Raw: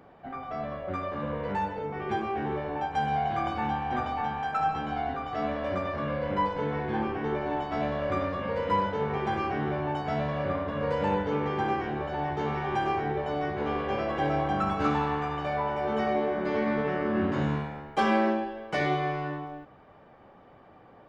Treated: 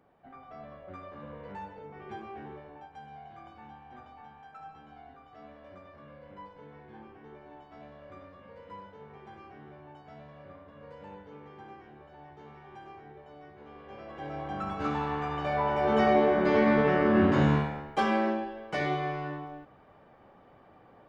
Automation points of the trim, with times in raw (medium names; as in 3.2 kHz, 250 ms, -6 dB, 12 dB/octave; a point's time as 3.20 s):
2.39 s -12 dB
3.01 s -20 dB
13.71 s -20 dB
14.54 s -8 dB
16.03 s +4.5 dB
17.58 s +4.5 dB
18.08 s -3 dB